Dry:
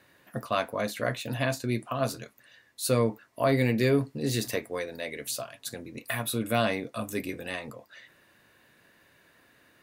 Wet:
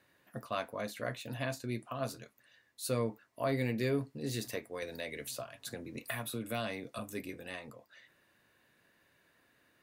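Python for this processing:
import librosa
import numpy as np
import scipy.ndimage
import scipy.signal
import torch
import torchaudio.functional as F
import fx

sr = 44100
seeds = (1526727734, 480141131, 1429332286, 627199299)

y = fx.band_squash(x, sr, depth_pct=70, at=(4.82, 6.99))
y = y * librosa.db_to_amplitude(-8.5)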